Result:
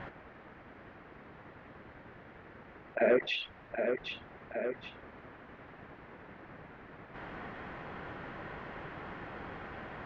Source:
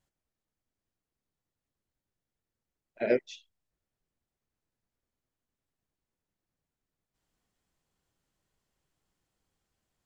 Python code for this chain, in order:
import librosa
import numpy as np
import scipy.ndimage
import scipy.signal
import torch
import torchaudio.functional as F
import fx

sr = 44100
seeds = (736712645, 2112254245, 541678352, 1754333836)

p1 = fx.highpass(x, sr, hz=510.0, slope=6)
p2 = fx.tilt_eq(p1, sr, slope=-2.0)
p3 = 10.0 ** (-22.0 / 20.0) * np.tanh(p2 / 10.0 ** (-22.0 / 20.0))
p4 = fx.ladder_lowpass(p3, sr, hz=2400.0, resonance_pct=30)
p5 = p4 + fx.echo_feedback(p4, sr, ms=770, feedback_pct=29, wet_db=-20.5, dry=0)
p6 = fx.env_flatten(p5, sr, amount_pct=70)
y = F.gain(torch.from_numpy(p6), 9.0).numpy()